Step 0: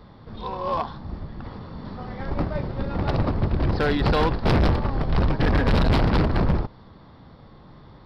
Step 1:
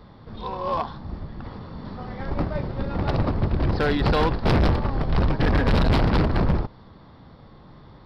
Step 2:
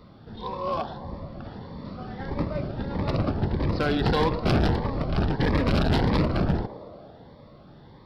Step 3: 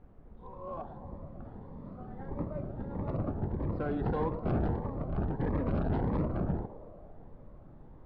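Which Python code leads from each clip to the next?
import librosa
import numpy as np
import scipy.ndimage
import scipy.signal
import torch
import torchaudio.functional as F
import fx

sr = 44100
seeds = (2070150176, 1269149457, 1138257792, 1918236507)

y1 = x
y2 = fx.low_shelf(y1, sr, hz=62.0, db=-10.0)
y2 = fx.echo_banded(y2, sr, ms=112, feedback_pct=80, hz=580.0, wet_db=-11.0)
y2 = fx.notch_cascade(y2, sr, direction='rising', hz=1.6)
y3 = fx.fade_in_head(y2, sr, length_s=1.05)
y3 = fx.dmg_noise_colour(y3, sr, seeds[0], colour='brown', level_db=-42.0)
y3 = scipy.signal.sosfilt(scipy.signal.butter(2, 1100.0, 'lowpass', fs=sr, output='sos'), y3)
y3 = y3 * 10.0 ** (-8.0 / 20.0)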